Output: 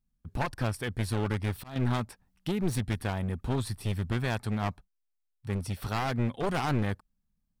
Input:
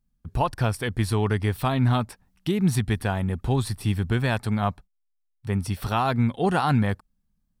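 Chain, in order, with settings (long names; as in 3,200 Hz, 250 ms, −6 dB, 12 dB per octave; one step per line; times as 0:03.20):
wavefolder on the positive side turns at −23.5 dBFS
0:01.28–0:01.76: volume swells 276 ms
level −5.5 dB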